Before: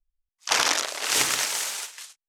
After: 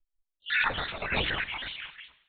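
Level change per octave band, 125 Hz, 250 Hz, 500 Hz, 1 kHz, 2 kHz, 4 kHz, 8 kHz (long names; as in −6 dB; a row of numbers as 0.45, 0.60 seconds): +9.5 dB, +0.5 dB, −3.5 dB, −5.0 dB, −0.5 dB, −8.0 dB, below −40 dB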